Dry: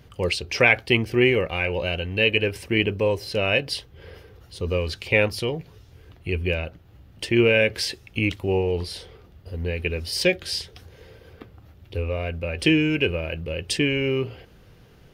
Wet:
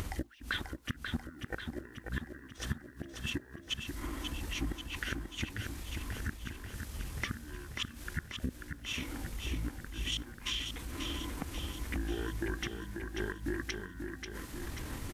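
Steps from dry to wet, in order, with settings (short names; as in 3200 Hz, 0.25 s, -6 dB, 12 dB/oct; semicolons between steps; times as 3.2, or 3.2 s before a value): in parallel at +1 dB: limiter -14 dBFS, peak gain reduction 11 dB; on the sum: upward compressor, threshold -23 dBFS; added noise white -46 dBFS; flipped gate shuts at -9 dBFS, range -29 dB; compressor 5:1, threshold -27 dBFS, peak gain reduction 11 dB; pitch shift -7.5 st; bit-crush 11-bit; on a send: feedback echo 0.538 s, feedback 59%, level -6 dB; on the sum: gain -6.5 dB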